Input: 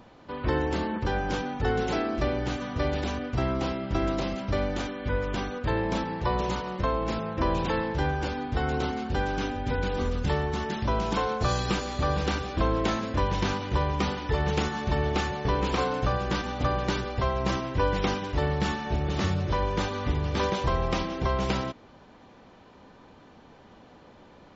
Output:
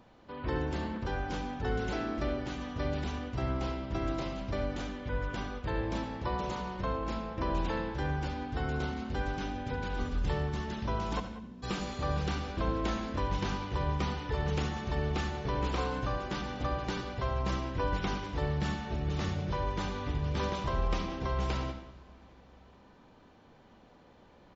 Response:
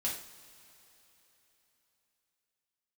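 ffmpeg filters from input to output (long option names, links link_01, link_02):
-filter_complex "[0:a]asplit=3[link_01][link_02][link_03];[link_01]afade=type=out:start_time=11.19:duration=0.02[link_04];[link_02]asuperpass=centerf=220:order=4:qfactor=3,afade=type=in:start_time=11.19:duration=0.02,afade=type=out:start_time=11.62:duration=0.02[link_05];[link_03]afade=type=in:start_time=11.62:duration=0.02[link_06];[link_04][link_05][link_06]amix=inputs=3:normalize=0,asplit=2[link_07][link_08];[link_08]adelay=190,highpass=300,lowpass=3400,asoftclip=type=hard:threshold=-20.5dB,volume=-14dB[link_09];[link_07][link_09]amix=inputs=2:normalize=0,asplit=2[link_10][link_11];[1:a]atrim=start_sample=2205,lowshelf=frequency=140:gain=11.5,adelay=68[link_12];[link_11][link_12]afir=irnorm=-1:irlink=0,volume=-12dB[link_13];[link_10][link_13]amix=inputs=2:normalize=0,volume=-7.5dB"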